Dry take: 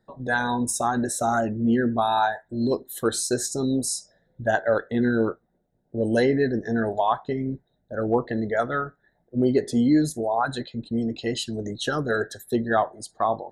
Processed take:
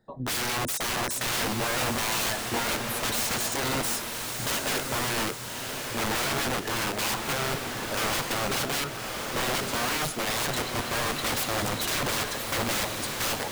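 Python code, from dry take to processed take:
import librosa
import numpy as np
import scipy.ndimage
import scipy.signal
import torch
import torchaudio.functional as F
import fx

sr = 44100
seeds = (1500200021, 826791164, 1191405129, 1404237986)

y = fx.rider(x, sr, range_db=3, speed_s=0.5)
y = (np.mod(10.0 ** (24.0 / 20.0) * y + 1.0, 2.0) - 1.0) / 10.0 ** (24.0 / 20.0)
y = fx.echo_diffused(y, sr, ms=1149, feedback_pct=44, wet_db=-4.0)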